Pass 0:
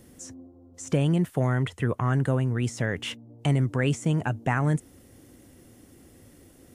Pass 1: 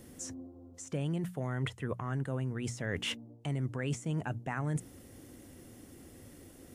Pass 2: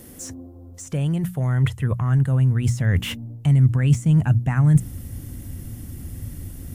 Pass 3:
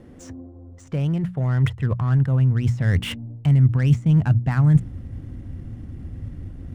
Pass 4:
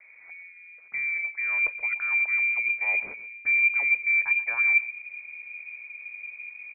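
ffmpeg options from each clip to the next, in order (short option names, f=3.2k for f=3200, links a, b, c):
-af "areverse,acompressor=threshold=-31dB:ratio=6,areverse,bandreject=f=60:t=h:w=6,bandreject=f=120:t=h:w=6,bandreject=f=180:t=h:w=6"
-filter_complex "[0:a]asubboost=boost=11:cutoff=130,acrossover=split=2600[a][b];[b]asoftclip=type=tanh:threshold=-39.5dB[c];[a][c]amix=inputs=2:normalize=0,equalizer=f=13k:w=1.2:g=11,volume=8dB"
-af "adynamicsmooth=sensitivity=7:basefreq=1.8k"
-filter_complex "[0:a]acrossover=split=230|460|790[a][b][c][d];[a]acrusher=samples=16:mix=1:aa=0.000001[e];[e][b][c][d]amix=inputs=4:normalize=0,aecho=1:1:127:0.168,lowpass=f=2.1k:t=q:w=0.5098,lowpass=f=2.1k:t=q:w=0.6013,lowpass=f=2.1k:t=q:w=0.9,lowpass=f=2.1k:t=q:w=2.563,afreqshift=-2500,volume=-7dB"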